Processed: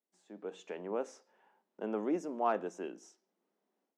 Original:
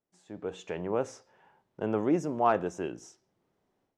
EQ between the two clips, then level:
elliptic high-pass filter 200 Hz, stop band 50 dB
−6.0 dB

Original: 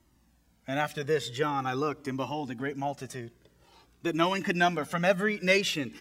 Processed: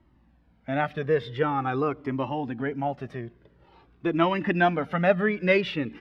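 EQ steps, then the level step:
dynamic equaliser 7,400 Hz, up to −5 dB, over −58 dBFS, Q 5.9
high-frequency loss of the air 400 metres
+5.0 dB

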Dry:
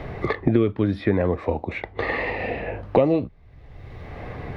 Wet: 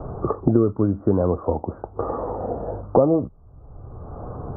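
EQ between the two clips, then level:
Butterworth low-pass 1,400 Hz 96 dB per octave
+1.5 dB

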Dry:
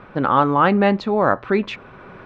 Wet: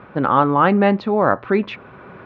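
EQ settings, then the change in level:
high-pass filter 69 Hz
high-frequency loss of the air 170 metres
+1.5 dB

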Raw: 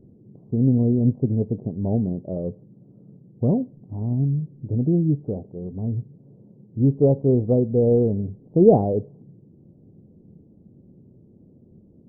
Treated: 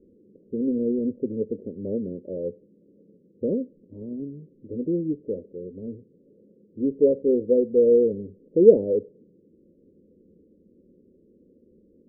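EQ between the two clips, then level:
low-pass with resonance 520 Hz, resonance Q 4.9
phaser with its sweep stopped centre 310 Hz, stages 4
−6.0 dB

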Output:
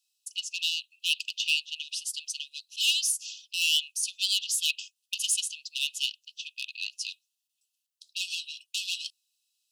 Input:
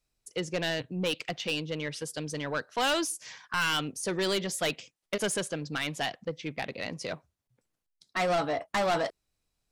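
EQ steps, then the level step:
linear-phase brick-wall high-pass 2,500 Hz
+7.5 dB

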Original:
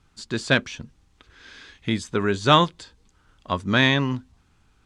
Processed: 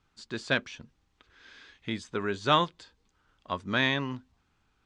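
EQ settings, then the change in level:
high-frequency loss of the air 61 metres
low-shelf EQ 240 Hz −7 dB
−6.0 dB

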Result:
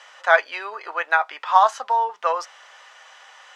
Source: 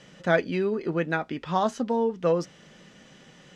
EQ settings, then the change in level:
high-pass filter 750 Hz 24 dB per octave
parametric band 1,000 Hz +9.5 dB 1.6 octaves
+4.5 dB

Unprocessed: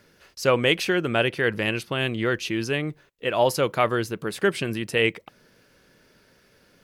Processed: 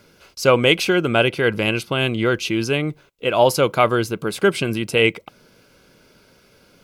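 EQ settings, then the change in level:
Butterworth band-reject 1,800 Hz, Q 5.9
+5.5 dB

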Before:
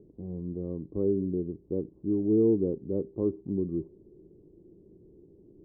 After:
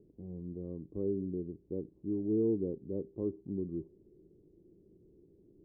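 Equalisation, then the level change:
low-pass filter 1,000 Hz 6 dB per octave
−6.5 dB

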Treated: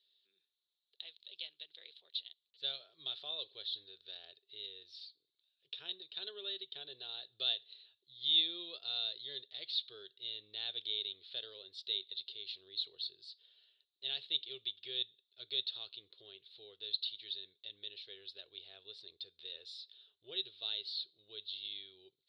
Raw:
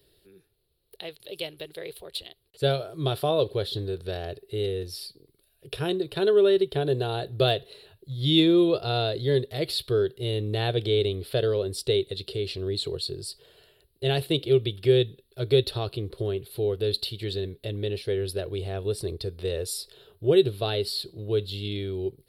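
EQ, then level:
resonant band-pass 3,700 Hz, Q 5.5
high-frequency loss of the air 160 metres
+1.5 dB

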